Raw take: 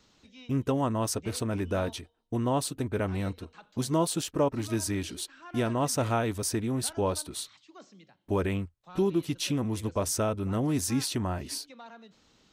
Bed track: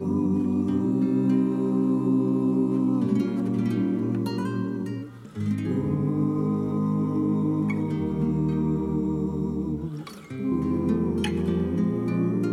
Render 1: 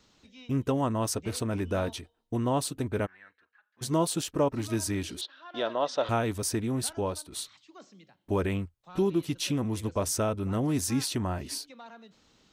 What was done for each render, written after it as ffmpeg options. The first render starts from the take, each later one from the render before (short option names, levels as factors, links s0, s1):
-filter_complex "[0:a]asplit=3[s0][s1][s2];[s0]afade=t=out:st=3.05:d=0.02[s3];[s1]bandpass=f=1700:t=q:w=8.7,afade=t=in:st=3.05:d=0.02,afade=t=out:st=3.81:d=0.02[s4];[s2]afade=t=in:st=3.81:d=0.02[s5];[s3][s4][s5]amix=inputs=3:normalize=0,asettb=1/sr,asplit=3[s6][s7][s8];[s6]atrim=end=5.214[s9];[s7]atrim=start=5.21:end=6.09,asetpts=PTS-STARTPTS,afade=t=in:d=0.004:c=qsin,afade=t=out:st=0.876:d=0.004:c=qsin,highpass=460,equalizer=f=580:t=q:w=4:g=7,equalizer=f=2300:t=q:w=4:g=-7,equalizer=f=3600:t=q:w=4:g=9,lowpass=f=4600:w=0.5412,lowpass=f=4600:w=1.3066[s10];[s8]atrim=start=6.086[s11];[s9][s10]acrossfade=d=0.004:c1=hsin:c2=qsin[s12];[s12][s11]acrossfade=d=0.004:c1=qsin:c2=hsin,asplit=2[s13][s14];[s13]atrim=end=7.32,asetpts=PTS-STARTPTS,afade=t=out:st=6.82:d=0.5:silence=0.398107[s15];[s14]atrim=start=7.32,asetpts=PTS-STARTPTS,afade=t=in:d=0.004:c=hsin:silence=0.398107[s16];[s15][s16]concat=n=2:v=0:a=1"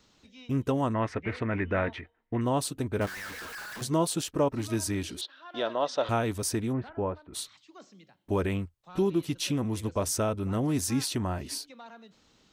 -filter_complex "[0:a]asettb=1/sr,asplit=3[s0][s1][s2];[s0]atrim=end=0.944[s3];[s1]atrim=start=0.94:end=2.41,asetpts=PTS-STARTPTS,afade=t=in:d=0.004:c=qsin,afade=t=out:st=1.466:d=0.004:c=qsin,lowpass=f=2000:t=q:w=5[s4];[s2]atrim=start=2.406[s5];[s3][s4]acrossfade=d=0.004:c1=hsin:c2=qsin[s6];[s6][s5]acrossfade=d=0.004:c1=qsin:c2=hsin,asettb=1/sr,asplit=3[s7][s8][s9];[s7]atrim=end=3.014[s10];[s8]atrim=start=3.01:end=3.83,asetpts=PTS-STARTPTS,afade=t=in:d=0.004:c=qsin,afade=t=out:st=0.816:d=0.004:c=qsin,aeval=exprs='val(0)+0.5*0.0188*sgn(val(0))':c=same[s11];[s9]atrim=start=3.826[s12];[s10][s11]acrossfade=d=0.004:c1=hsin:c2=qsin[s13];[s13][s12]acrossfade=d=0.004:c1=qsin:c2=hsin,asplit=3[s14][s15][s16];[s14]afade=t=out:st=6.72:d=0.02[s17];[s15]lowpass=f=2100:w=0.5412,lowpass=f=2100:w=1.3066,afade=t=in:st=6.72:d=0.02,afade=t=out:st=7.33:d=0.02[s18];[s16]afade=t=in:st=7.33:d=0.02[s19];[s17][s18][s19]amix=inputs=3:normalize=0"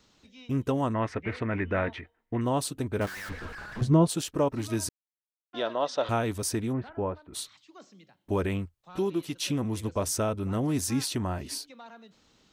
-filter_complex "[0:a]asplit=3[s0][s1][s2];[s0]afade=t=out:st=3.28:d=0.02[s3];[s1]aemphasis=mode=reproduction:type=riaa,afade=t=in:st=3.28:d=0.02,afade=t=out:st=4.08:d=0.02[s4];[s2]afade=t=in:st=4.08:d=0.02[s5];[s3][s4][s5]amix=inputs=3:normalize=0,asettb=1/sr,asplit=3[s6][s7][s8];[s6]atrim=end=8.974[s9];[s7]atrim=start=8.97:end=9.43,asetpts=PTS-STARTPTS,afade=t=in:d=0.004:c=qsin,afade=t=out:st=0.456:d=0.004:c=qsin,lowshelf=f=170:g=-10.5[s10];[s8]atrim=start=9.426[s11];[s9][s10]acrossfade=d=0.004:c1=hsin:c2=qsin[s12];[s12][s11]acrossfade=d=0.004:c1=qsin:c2=hsin,asplit=3[s13][s14][s15];[s13]atrim=end=4.89,asetpts=PTS-STARTPTS,afade=t=out:st=4.886:d=0.004:c=hsin[s16];[s14]atrim=start=4.89:end=5.53,asetpts=PTS-STARTPTS,volume=0[s17];[s15]atrim=start=5.53,asetpts=PTS-STARTPTS,afade=t=in:d=0.004:c=hsin[s18];[s16][s17][s18]concat=n=3:v=0:a=1"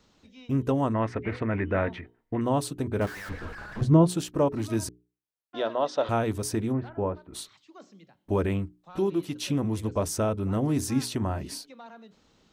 -af "tiltshelf=f=1400:g=3,bandreject=f=60:t=h:w=6,bandreject=f=120:t=h:w=6,bandreject=f=180:t=h:w=6,bandreject=f=240:t=h:w=6,bandreject=f=300:t=h:w=6,bandreject=f=360:t=h:w=6,bandreject=f=420:t=h:w=6"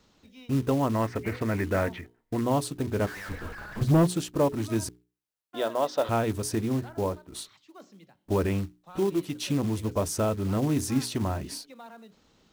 -af "acrusher=bits=5:mode=log:mix=0:aa=0.000001,asoftclip=type=hard:threshold=0.168"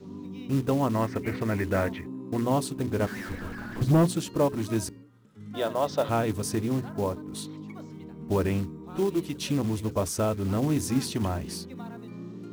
-filter_complex "[1:a]volume=0.158[s0];[0:a][s0]amix=inputs=2:normalize=0"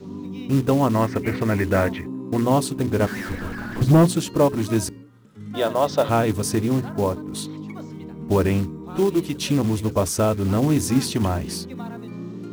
-af "volume=2.11"